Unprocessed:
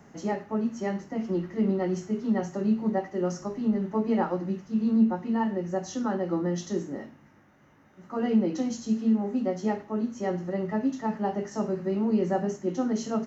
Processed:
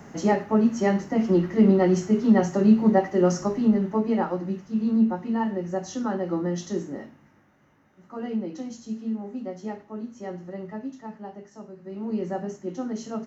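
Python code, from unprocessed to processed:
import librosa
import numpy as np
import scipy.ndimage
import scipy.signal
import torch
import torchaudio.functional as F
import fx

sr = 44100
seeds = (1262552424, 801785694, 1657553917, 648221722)

y = fx.gain(x, sr, db=fx.line((3.46, 8.0), (4.17, 1.0), (6.89, 1.0), (8.47, -6.0), (10.62, -6.0), (11.75, -14.0), (12.12, -3.5)))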